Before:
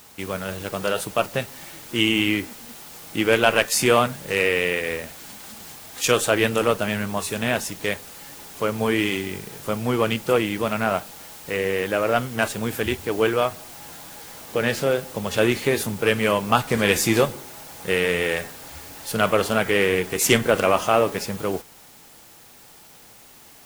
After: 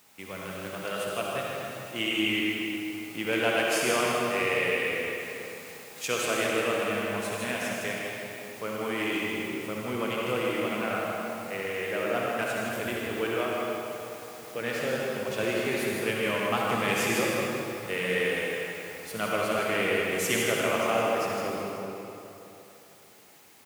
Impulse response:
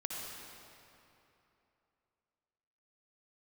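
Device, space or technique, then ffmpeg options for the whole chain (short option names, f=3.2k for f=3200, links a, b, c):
PA in a hall: -filter_complex "[0:a]highpass=120,equalizer=f=2.2k:t=o:w=0.52:g=4,aecho=1:1:159:0.473[a];[1:a]atrim=start_sample=2205[b];[a][b]afir=irnorm=-1:irlink=0,volume=-9dB"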